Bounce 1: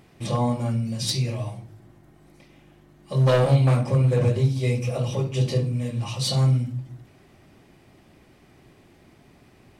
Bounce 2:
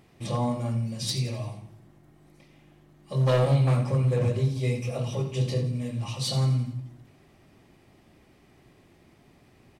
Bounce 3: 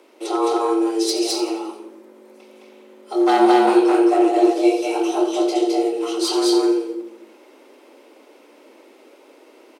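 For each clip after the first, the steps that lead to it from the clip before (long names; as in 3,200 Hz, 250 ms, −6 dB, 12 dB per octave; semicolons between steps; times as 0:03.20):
notch filter 1,500 Hz, Q 24; on a send: repeating echo 86 ms, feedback 47%, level −12 dB; on the sum: level −4 dB
loudspeakers that aren't time-aligned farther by 73 metres −1 dB, 88 metres −10 dB; frequency shifter +220 Hz; level +6 dB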